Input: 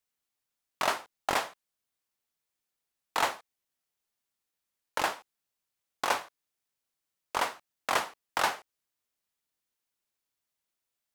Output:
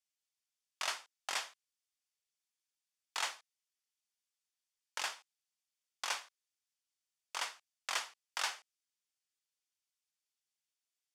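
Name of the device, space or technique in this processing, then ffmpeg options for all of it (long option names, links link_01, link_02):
piezo pickup straight into a mixer: -af "lowpass=5700,aderivative,bandreject=frequency=4000:width=15,volume=4dB"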